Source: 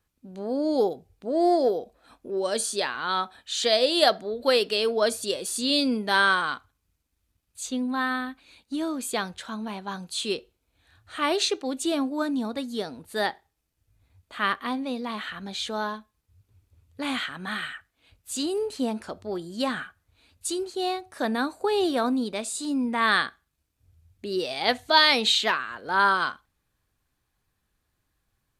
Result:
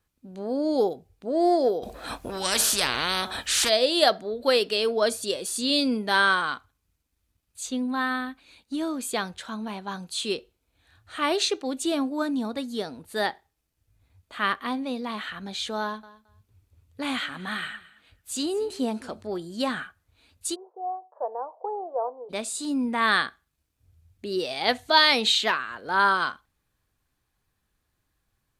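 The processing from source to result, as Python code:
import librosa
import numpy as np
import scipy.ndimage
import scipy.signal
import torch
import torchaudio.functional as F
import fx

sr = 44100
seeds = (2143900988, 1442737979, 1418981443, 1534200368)

y = fx.spectral_comp(x, sr, ratio=4.0, at=(1.82, 3.68), fade=0.02)
y = fx.echo_feedback(y, sr, ms=220, feedback_pct=16, wet_db=-19.5, at=(15.81, 19.27))
y = fx.ellip_bandpass(y, sr, low_hz=470.0, high_hz=1000.0, order=3, stop_db=80, at=(20.54, 22.29), fade=0.02)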